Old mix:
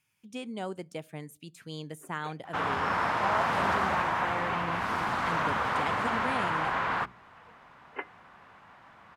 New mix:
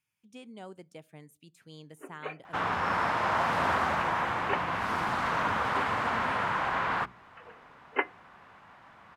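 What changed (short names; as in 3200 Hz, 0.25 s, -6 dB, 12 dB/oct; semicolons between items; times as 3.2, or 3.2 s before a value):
speech -9.0 dB; first sound +9.5 dB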